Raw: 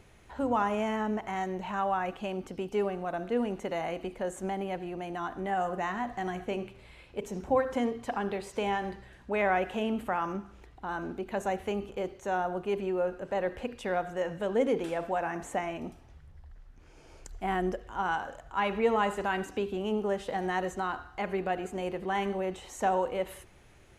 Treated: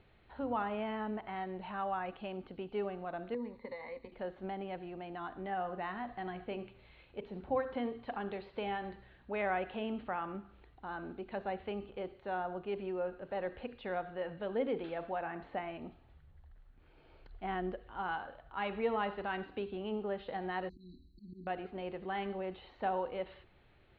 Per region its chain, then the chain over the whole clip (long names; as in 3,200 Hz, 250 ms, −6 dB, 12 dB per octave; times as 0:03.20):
0:03.34–0:04.12: noise gate −39 dBFS, range −9 dB + downward compressor 8 to 1, threshold −36 dBFS + EQ curve with evenly spaced ripples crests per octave 0.97, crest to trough 18 dB
0:20.69–0:21.47: comb filter 4.6 ms, depth 77% + volume swells 143 ms + linear-phase brick-wall band-stop 370–3,900 Hz
whole clip: Chebyshev low-pass filter 4,300 Hz, order 6; notch filter 1,000 Hz, Q 23; level −6.5 dB